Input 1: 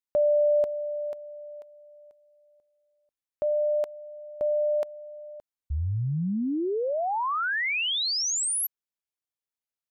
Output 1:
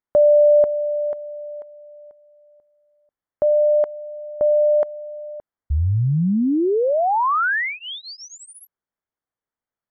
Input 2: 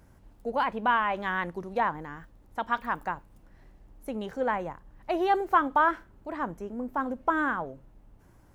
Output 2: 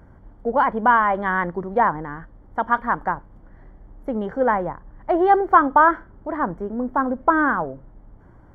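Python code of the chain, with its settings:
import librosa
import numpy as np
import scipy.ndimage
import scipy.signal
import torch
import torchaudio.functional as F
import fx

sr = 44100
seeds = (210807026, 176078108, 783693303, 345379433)

y = scipy.signal.savgol_filter(x, 41, 4, mode='constant')
y = y * 10.0 ** (9.0 / 20.0)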